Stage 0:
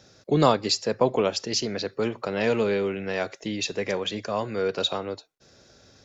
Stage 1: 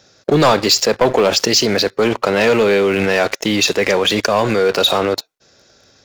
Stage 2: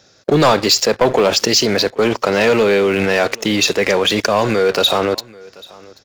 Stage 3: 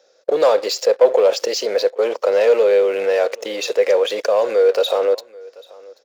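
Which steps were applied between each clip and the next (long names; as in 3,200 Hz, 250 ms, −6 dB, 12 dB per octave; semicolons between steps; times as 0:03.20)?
low-shelf EQ 360 Hz −7 dB; leveller curve on the samples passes 3; in parallel at −2 dB: compressor whose output falls as the input rises −27 dBFS, ratio −1; on the sum: level +2 dB
single-tap delay 785 ms −23.5 dB
high-pass with resonance 510 Hz, resonance Q 6.1; level −10.5 dB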